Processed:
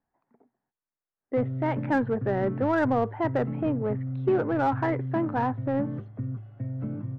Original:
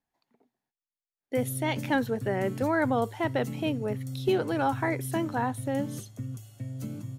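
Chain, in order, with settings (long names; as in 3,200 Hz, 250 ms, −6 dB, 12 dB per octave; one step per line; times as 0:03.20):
low-pass filter 1,700 Hz 24 dB per octave
in parallel at −3 dB: soft clipping −31 dBFS, distortion −7 dB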